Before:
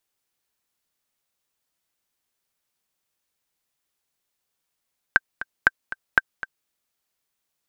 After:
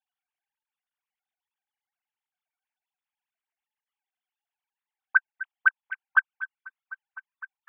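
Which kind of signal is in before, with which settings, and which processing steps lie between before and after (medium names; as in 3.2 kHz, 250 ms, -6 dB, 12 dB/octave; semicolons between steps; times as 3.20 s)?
metronome 236 bpm, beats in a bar 2, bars 3, 1.56 kHz, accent 15 dB -1 dBFS
formants replaced by sine waves; repeats whose band climbs or falls 251 ms, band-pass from 190 Hz, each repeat 0.7 oct, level -8 dB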